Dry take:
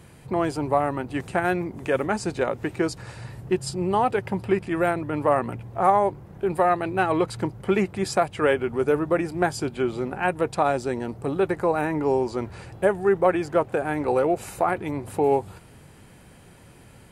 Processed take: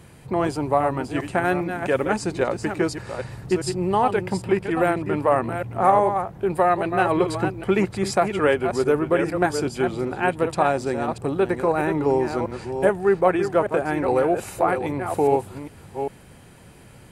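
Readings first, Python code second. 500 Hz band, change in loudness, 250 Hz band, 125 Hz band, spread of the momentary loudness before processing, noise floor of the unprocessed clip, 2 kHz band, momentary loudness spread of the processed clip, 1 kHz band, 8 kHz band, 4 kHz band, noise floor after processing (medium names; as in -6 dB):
+2.0 dB, +2.0 dB, +2.0 dB, +2.5 dB, 7 LU, -50 dBFS, +2.0 dB, 6 LU, +2.0 dB, +2.0 dB, +2.0 dB, -47 dBFS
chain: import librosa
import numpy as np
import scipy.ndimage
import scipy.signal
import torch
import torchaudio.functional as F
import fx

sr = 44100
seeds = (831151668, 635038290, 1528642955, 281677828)

y = fx.reverse_delay(x, sr, ms=402, wet_db=-7.5)
y = F.gain(torch.from_numpy(y), 1.5).numpy()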